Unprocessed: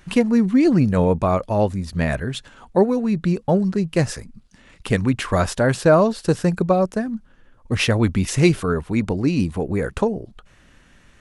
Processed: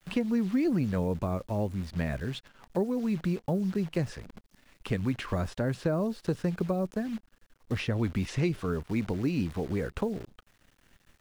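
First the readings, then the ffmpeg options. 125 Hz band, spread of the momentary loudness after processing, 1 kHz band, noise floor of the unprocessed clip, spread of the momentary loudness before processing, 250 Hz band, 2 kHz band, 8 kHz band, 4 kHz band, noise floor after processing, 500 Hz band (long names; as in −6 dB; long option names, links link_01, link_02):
−9.5 dB, 8 LU, −15.0 dB, −53 dBFS, 10 LU, −10.0 dB, −12.5 dB, −17.0 dB, −12.5 dB, −68 dBFS, −13.0 dB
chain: -filter_complex "[0:a]acrusher=bits=7:dc=4:mix=0:aa=0.000001,acrossover=split=420|5000[link_01][link_02][link_03];[link_01]acompressor=threshold=-18dB:ratio=4[link_04];[link_02]acompressor=threshold=-28dB:ratio=4[link_05];[link_03]acompressor=threshold=-52dB:ratio=4[link_06];[link_04][link_05][link_06]amix=inputs=3:normalize=0,volume=-7.5dB"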